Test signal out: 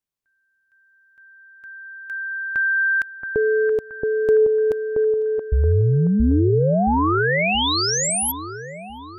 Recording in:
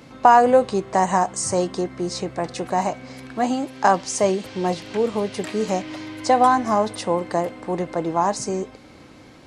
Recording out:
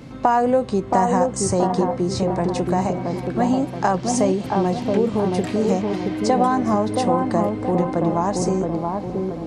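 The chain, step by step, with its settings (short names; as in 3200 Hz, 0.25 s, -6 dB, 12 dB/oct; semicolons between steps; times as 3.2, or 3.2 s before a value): low shelf 330 Hz +11 dB; compressor 2:1, threshold -19 dBFS; dark delay 0.675 s, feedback 47%, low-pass 1200 Hz, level -3 dB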